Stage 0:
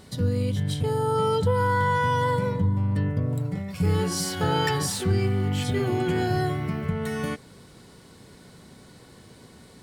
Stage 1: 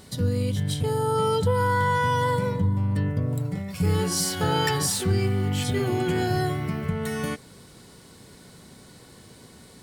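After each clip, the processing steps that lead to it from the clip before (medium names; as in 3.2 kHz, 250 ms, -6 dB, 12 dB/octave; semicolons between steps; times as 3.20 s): treble shelf 5.1 kHz +6 dB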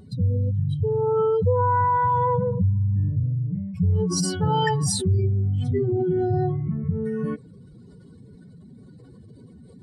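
spectral contrast enhancement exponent 2.5; trim +2.5 dB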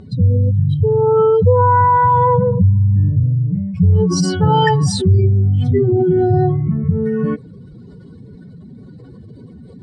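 distance through air 99 m; trim +9 dB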